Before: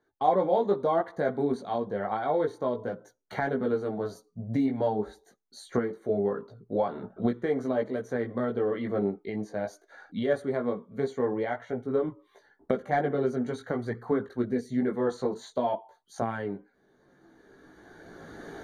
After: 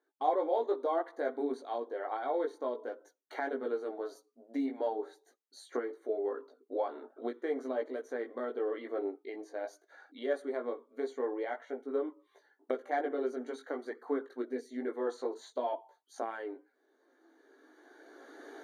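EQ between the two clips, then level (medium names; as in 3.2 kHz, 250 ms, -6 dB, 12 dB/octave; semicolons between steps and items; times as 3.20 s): brick-wall FIR high-pass 250 Hz; -6.0 dB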